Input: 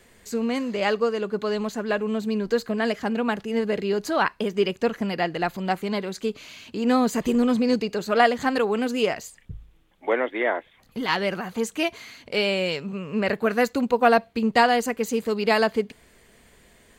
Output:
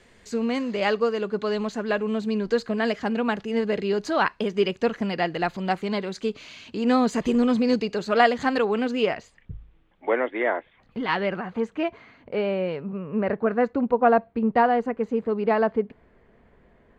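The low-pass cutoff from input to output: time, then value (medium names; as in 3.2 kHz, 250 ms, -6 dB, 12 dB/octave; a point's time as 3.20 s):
8.47 s 6.1 kHz
9.38 s 2.6 kHz
11.15 s 2.6 kHz
12.20 s 1.3 kHz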